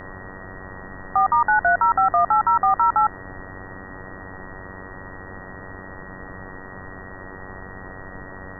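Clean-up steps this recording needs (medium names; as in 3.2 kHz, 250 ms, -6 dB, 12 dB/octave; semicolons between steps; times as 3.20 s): de-hum 94.3 Hz, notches 20; band-stop 1.9 kHz, Q 30; noise print and reduce 28 dB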